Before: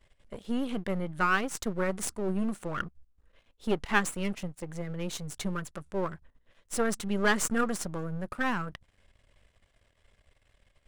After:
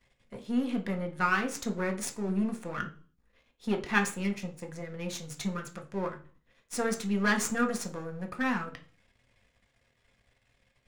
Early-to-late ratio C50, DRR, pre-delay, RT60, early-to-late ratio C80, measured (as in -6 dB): 13.0 dB, 3.0 dB, 4 ms, 0.40 s, 18.5 dB